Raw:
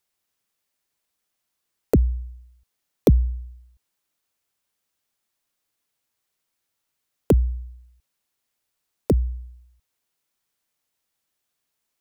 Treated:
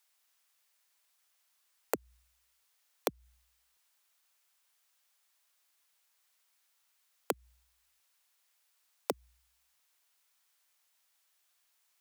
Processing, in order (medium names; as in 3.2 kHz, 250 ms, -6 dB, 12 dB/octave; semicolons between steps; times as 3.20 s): high-pass 800 Hz 12 dB/octave; compression 6:1, threshold -33 dBFS, peak gain reduction 10.5 dB; trim +4.5 dB